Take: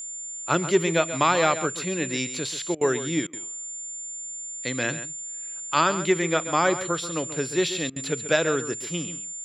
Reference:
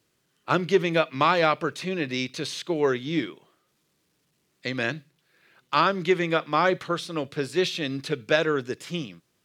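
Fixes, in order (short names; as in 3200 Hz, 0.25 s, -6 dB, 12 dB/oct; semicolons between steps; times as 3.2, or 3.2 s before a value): notch 7200 Hz, Q 30; interpolate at 2.75/3.27/7.9, 60 ms; inverse comb 0.135 s -12 dB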